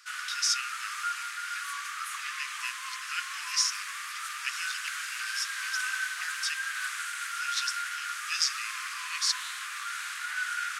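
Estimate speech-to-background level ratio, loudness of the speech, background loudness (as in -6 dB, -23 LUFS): 1.0 dB, -33.0 LUFS, -34.0 LUFS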